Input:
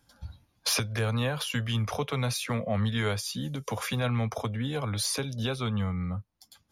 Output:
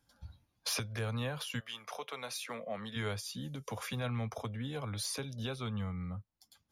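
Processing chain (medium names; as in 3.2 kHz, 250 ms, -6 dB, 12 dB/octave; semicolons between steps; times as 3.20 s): 1.59–2.95 s: high-pass 750 Hz -> 250 Hz 12 dB/octave; trim -8 dB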